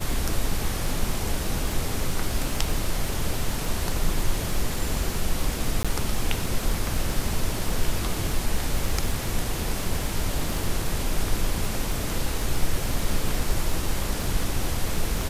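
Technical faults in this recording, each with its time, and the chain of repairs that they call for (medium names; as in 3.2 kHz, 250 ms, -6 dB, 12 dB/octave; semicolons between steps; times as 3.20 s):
crackle 24 per s -27 dBFS
5.83–5.85 s: dropout 16 ms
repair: de-click; interpolate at 5.83 s, 16 ms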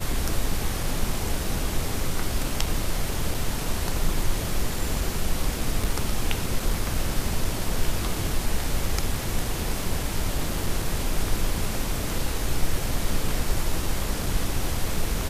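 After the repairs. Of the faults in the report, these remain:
nothing left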